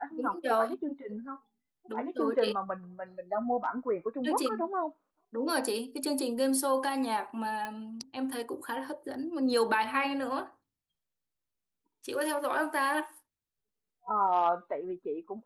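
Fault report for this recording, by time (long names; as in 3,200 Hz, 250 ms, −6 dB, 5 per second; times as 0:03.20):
0:07.65: click −22 dBFS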